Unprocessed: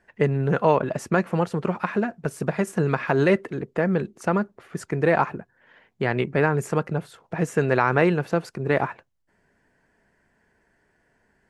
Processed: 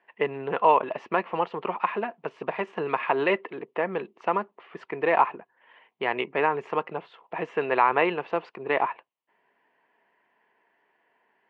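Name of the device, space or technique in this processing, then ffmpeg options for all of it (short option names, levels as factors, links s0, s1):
phone earpiece: -af "highpass=490,equalizer=f=570:t=q:w=4:g=-4,equalizer=f=1000:t=q:w=4:g=6,equalizer=f=1500:t=q:w=4:g=-9,equalizer=f=2900:t=q:w=4:g=5,lowpass=f=3100:w=0.5412,lowpass=f=3100:w=1.3066,volume=1.12"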